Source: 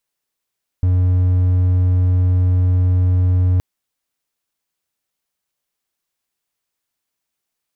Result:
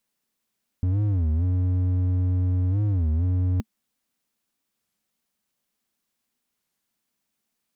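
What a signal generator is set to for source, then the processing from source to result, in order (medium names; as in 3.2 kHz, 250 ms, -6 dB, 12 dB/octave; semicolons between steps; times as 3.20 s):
tone triangle 90.9 Hz -9.5 dBFS 2.77 s
peaking EQ 220 Hz +12 dB 0.62 oct; peak limiter -17.5 dBFS; warped record 33 1/3 rpm, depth 250 cents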